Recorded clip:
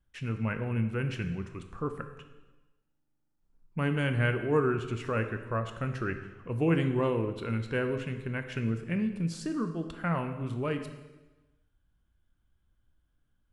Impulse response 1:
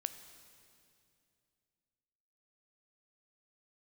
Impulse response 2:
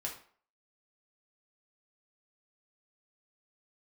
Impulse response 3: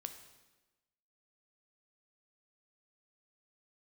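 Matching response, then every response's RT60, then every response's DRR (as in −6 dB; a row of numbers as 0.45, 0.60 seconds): 3; 2.5, 0.50, 1.1 seconds; 10.0, −2.0, 7.0 decibels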